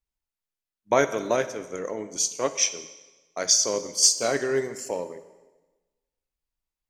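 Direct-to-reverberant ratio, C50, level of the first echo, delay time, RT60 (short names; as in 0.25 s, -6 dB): 11.0 dB, 13.0 dB, none, none, 1.2 s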